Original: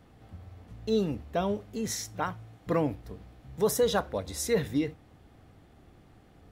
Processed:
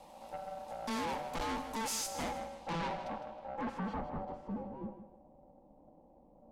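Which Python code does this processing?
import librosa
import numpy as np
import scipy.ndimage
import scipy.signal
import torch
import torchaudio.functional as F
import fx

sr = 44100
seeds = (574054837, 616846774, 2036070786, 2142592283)

p1 = fx.highpass(x, sr, hz=62.0, slope=6)
p2 = fx.high_shelf(p1, sr, hz=5600.0, db=6.0)
p3 = fx.rider(p2, sr, range_db=10, speed_s=0.5)
p4 = p2 + F.gain(torch.from_numpy(p3), 2.0).numpy()
p5 = p4 * np.sin(2.0 * np.pi * 670.0 * np.arange(len(p4)) / sr)
p6 = fx.fixed_phaser(p5, sr, hz=400.0, stages=6)
p7 = fx.tube_stage(p6, sr, drive_db=39.0, bias=0.5)
p8 = fx.filter_sweep_lowpass(p7, sr, from_hz=12000.0, to_hz=390.0, start_s=2.17, end_s=4.73, q=0.8)
p9 = p8 + fx.echo_feedback(p8, sr, ms=158, feedback_pct=29, wet_db=-11, dry=0)
y = F.gain(torch.from_numpy(p9), 4.0).numpy()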